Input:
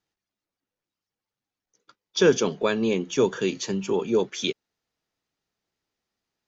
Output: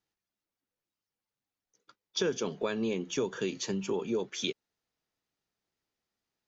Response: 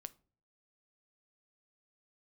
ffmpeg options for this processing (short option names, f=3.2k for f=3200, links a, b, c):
-af "acompressor=threshold=-24dB:ratio=4,volume=-4dB"